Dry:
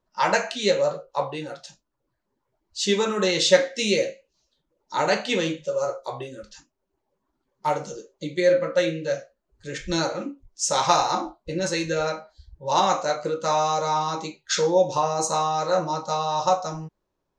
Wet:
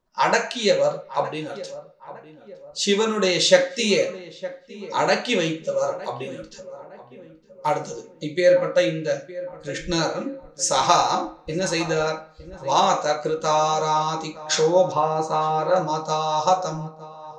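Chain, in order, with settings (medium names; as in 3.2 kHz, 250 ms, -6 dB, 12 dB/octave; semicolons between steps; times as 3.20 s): 14.92–15.76 s: low-pass 2.7 kHz 12 dB/octave; filtered feedback delay 911 ms, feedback 47%, low-pass 1.5 kHz, level -15.5 dB; on a send at -13.5 dB: reverberation RT60 1.0 s, pre-delay 3 ms; on the sum: trim +2 dB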